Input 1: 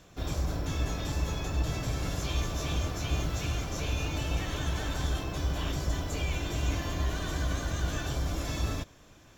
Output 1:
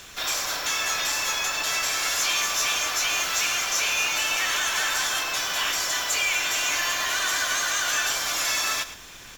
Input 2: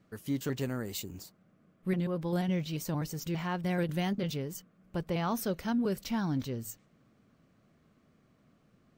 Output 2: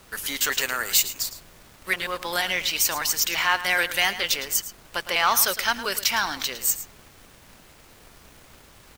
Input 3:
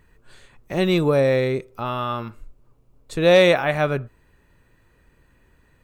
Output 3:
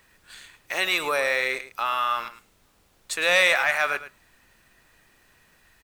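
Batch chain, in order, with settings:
high-pass 1.5 kHz 12 dB/octave; dynamic bell 3.6 kHz, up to -6 dB, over -49 dBFS, Q 2.3; added noise pink -68 dBFS; waveshaping leveller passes 1; in parallel at +1 dB: peak limiter -24.5 dBFS; on the sum: delay 109 ms -13.5 dB; normalise loudness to -23 LUFS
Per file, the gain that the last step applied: +8.5 dB, +11.5 dB, +1.0 dB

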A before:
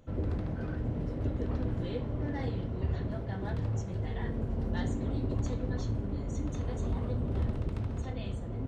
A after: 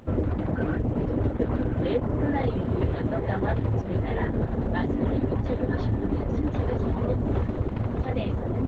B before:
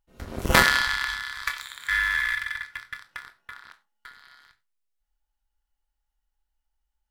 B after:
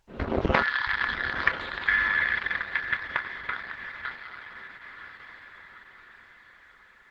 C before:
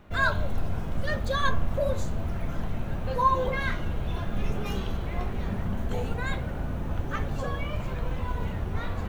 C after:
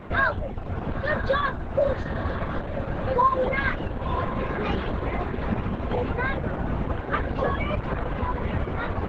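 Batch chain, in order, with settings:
dynamic bell 160 Hz, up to -4 dB, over -49 dBFS, Q 1.7; reverb removal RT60 0.63 s; compression 4:1, threshold -34 dBFS; Gaussian low-pass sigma 2.7 samples; bass shelf 66 Hz -11.5 dB; on a send: echo that smears into a reverb 983 ms, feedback 49%, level -10.5 dB; on the sum: Opus 10 kbps 48 kHz; normalise loudness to -27 LUFS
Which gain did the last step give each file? +16.0 dB, +15.0 dB, +15.5 dB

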